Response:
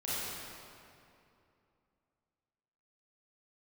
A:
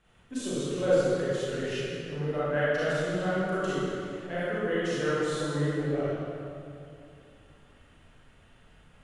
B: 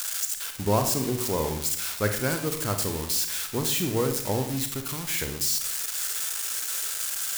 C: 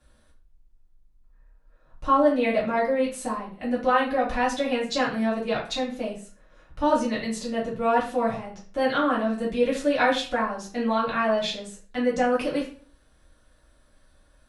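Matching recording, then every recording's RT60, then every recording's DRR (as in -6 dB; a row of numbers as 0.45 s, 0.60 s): A; 2.7 s, 0.65 s, 0.40 s; -11.0 dB, 5.5 dB, -7.5 dB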